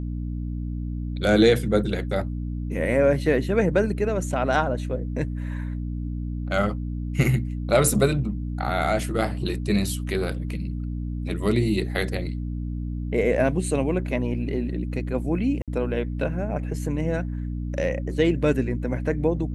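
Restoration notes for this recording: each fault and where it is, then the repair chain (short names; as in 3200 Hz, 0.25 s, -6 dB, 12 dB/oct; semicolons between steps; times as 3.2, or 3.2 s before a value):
hum 60 Hz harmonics 5 -29 dBFS
15.62–15.68 gap 57 ms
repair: de-hum 60 Hz, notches 5; interpolate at 15.62, 57 ms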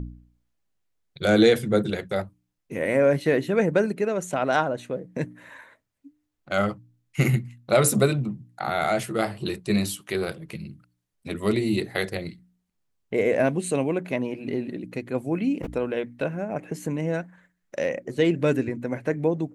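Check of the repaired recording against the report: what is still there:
none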